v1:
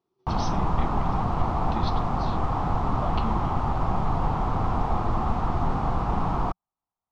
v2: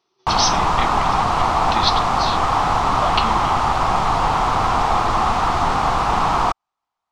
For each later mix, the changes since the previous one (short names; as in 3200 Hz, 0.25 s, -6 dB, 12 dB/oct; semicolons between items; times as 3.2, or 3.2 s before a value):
master: remove EQ curve 180 Hz 0 dB, 2000 Hz -17 dB, 12000 Hz -25 dB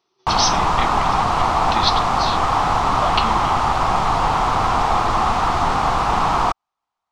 none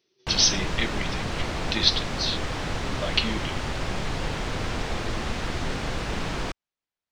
background -5.0 dB; master: add band shelf 960 Hz -15.5 dB 1.1 oct